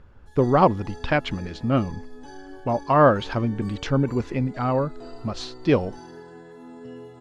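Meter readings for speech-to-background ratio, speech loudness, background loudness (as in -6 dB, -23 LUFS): 19.5 dB, -23.5 LUFS, -43.0 LUFS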